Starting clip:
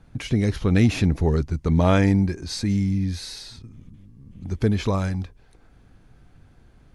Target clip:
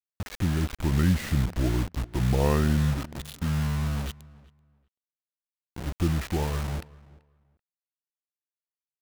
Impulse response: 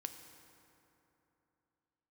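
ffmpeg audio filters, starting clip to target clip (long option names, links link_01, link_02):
-filter_complex "[0:a]lowpass=frequency=5900:width=0.5412,lowpass=frequency=5900:width=1.3066,aemphasis=mode=reproduction:type=50fm,asetrate=33957,aresample=44100,acrusher=bits=4:mix=0:aa=0.000001,asplit=2[link_01][link_02];[link_02]adelay=384,lowpass=frequency=2300:poles=1,volume=-22dB,asplit=2[link_03][link_04];[link_04]adelay=384,lowpass=frequency=2300:poles=1,volume=0.2[link_05];[link_03][link_05]amix=inputs=2:normalize=0[link_06];[link_01][link_06]amix=inputs=2:normalize=0,volume=-5.5dB"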